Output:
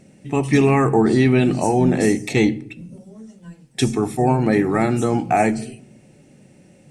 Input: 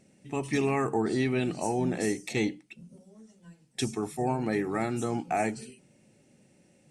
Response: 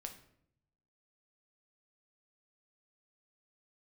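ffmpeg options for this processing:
-filter_complex "[0:a]asplit=2[link_01][link_02];[1:a]atrim=start_sample=2205,lowpass=3900,lowshelf=frequency=330:gain=9[link_03];[link_02][link_03]afir=irnorm=-1:irlink=0,volume=-4.5dB[link_04];[link_01][link_04]amix=inputs=2:normalize=0,volume=8dB"

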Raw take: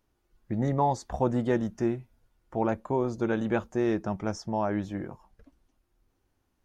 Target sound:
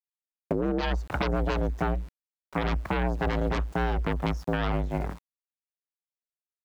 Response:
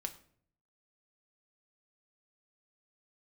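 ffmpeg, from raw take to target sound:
-af "lowpass=frequency=1600:poles=1,lowshelf=frequency=75:gain=-5.5,aeval=exprs='0.211*(cos(1*acos(clip(val(0)/0.211,-1,1)))-cos(1*PI/2))+0.0106*(cos(3*acos(clip(val(0)/0.211,-1,1)))-cos(3*PI/2))+0.0841*(cos(8*acos(clip(val(0)/0.211,-1,1)))-cos(8*PI/2))':channel_layout=same,afreqshift=56,aeval=exprs='val(0)*gte(abs(val(0)),0.00562)':channel_layout=same,asetnsamples=nb_out_samples=441:pad=0,asendcmd='0.81 equalizer g -2',equalizer=frequency=350:width=1.1:gain=11.5,alimiter=limit=-16dB:level=0:latency=1:release=133,acompressor=threshold=-26dB:ratio=6,volume=3dB"

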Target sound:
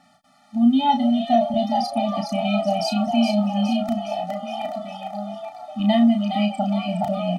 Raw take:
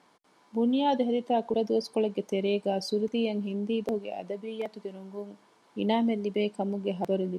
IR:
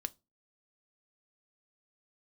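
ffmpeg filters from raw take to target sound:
-filter_complex "[0:a]asplit=2[link_01][link_02];[link_02]adelay=34,volume=-5.5dB[link_03];[link_01][link_03]amix=inputs=2:normalize=0,asplit=8[link_04][link_05][link_06][link_07][link_08][link_09][link_10][link_11];[link_05]adelay=415,afreqshift=110,volume=-5dB[link_12];[link_06]adelay=830,afreqshift=220,volume=-10.7dB[link_13];[link_07]adelay=1245,afreqshift=330,volume=-16.4dB[link_14];[link_08]adelay=1660,afreqshift=440,volume=-22dB[link_15];[link_09]adelay=2075,afreqshift=550,volume=-27.7dB[link_16];[link_10]adelay=2490,afreqshift=660,volume=-33.4dB[link_17];[link_11]adelay=2905,afreqshift=770,volume=-39.1dB[link_18];[link_04][link_12][link_13][link_14][link_15][link_16][link_17][link_18]amix=inputs=8:normalize=0,afftfilt=real='re*eq(mod(floor(b*sr/1024/290),2),0)':imag='im*eq(mod(floor(b*sr/1024/290),2),0)':win_size=1024:overlap=0.75,volume=8.5dB"

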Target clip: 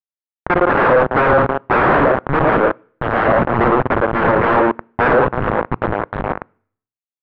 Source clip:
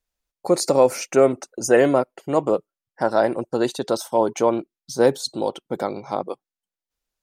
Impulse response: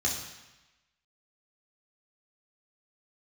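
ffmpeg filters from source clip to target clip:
-filter_complex "[0:a]asplit=2[link_01][link_02];[link_02]aecho=0:1:55.39|207:0.447|0.282[link_03];[link_01][link_03]amix=inputs=2:normalize=0,afwtdn=0.0708,aeval=exprs='val(0)*gte(abs(val(0)),0.112)':channel_layout=same,alimiter=limit=-14dB:level=0:latency=1:release=22,highpass=81,aecho=1:1:112:0.447,aeval=exprs='0.299*sin(PI/2*7.08*val(0)/0.299)':channel_layout=same,lowpass=frequency=1500:width=0.5412,lowpass=frequency=1500:width=1.3066,lowshelf=frequency=250:gain=-8,acontrast=58,asplit=2[link_04][link_05];[1:a]atrim=start_sample=2205,asetrate=79380,aresample=44100[link_06];[link_05][link_06]afir=irnorm=-1:irlink=0,volume=-26.5dB[link_07];[link_04][link_07]amix=inputs=2:normalize=0"

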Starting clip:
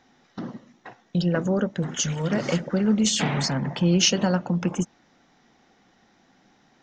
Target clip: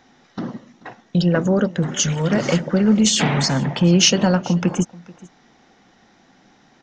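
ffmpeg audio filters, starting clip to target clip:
ffmpeg -i in.wav -filter_complex "[0:a]acontrast=54,aresample=22050,aresample=44100,asplit=2[link_01][link_02];[link_02]aecho=0:1:434:0.0794[link_03];[link_01][link_03]amix=inputs=2:normalize=0" out.wav

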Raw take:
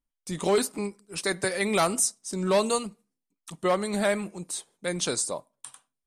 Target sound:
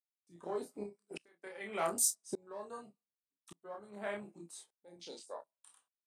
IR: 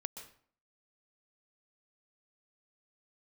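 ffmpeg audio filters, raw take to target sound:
-filter_complex "[0:a]highpass=310,afwtdn=0.0251,asettb=1/sr,asplit=3[link_01][link_02][link_03];[link_01]atrim=end=0.834[link_04];[link_02]atrim=start=0.83:end=1.44,asetpts=PTS-STARTPTS,afade=type=in:duration=0.004:curve=qsin,afade=type=out:start_time=0.606:duration=0.004:curve=qsin,acompressor=threshold=-43dB:ratio=4[link_05];[link_03]atrim=start=1.436[link_06];[link_04][link_05]acrossfade=duration=0.004:curve1=hsin:curve2=qsin[link_07];[link_07][link_06]acrossfade=duration=0.004:curve1=qsin:curve2=hsin,asplit=2[link_08][link_09];[link_09]adelay=29,volume=-3dB[link_10];[link_08][link_10]amix=inputs=2:normalize=0,asplit=2[link_11][link_12];[link_12]aecho=0:1:18|30:0.282|0.178[link_13];[link_11][link_13]amix=inputs=2:normalize=0,aeval=exprs='val(0)*pow(10,-30*if(lt(mod(-0.85*n/s,1),2*abs(-0.85)/1000),1-mod(-0.85*n/s,1)/(2*abs(-0.85)/1000),(mod(-0.85*n/s,1)-2*abs(-0.85)/1000)/(1-2*abs(-0.85)/1000))/20)':channel_layout=same,volume=1dB"

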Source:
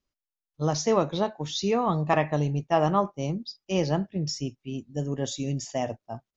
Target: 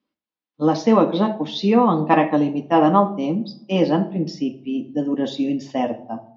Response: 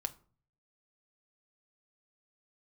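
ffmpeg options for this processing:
-filter_complex "[0:a]highpass=180,equalizer=frequency=220:width_type=q:width=4:gain=9,equalizer=frequency=320:width_type=q:width=4:gain=7,equalizer=frequency=980:width_type=q:width=4:gain=4,lowpass=frequency=4200:width=0.5412,lowpass=frequency=4200:width=1.3066[link_01];[1:a]atrim=start_sample=2205,asetrate=27342,aresample=44100[link_02];[link_01][link_02]afir=irnorm=-1:irlink=0,volume=3dB"

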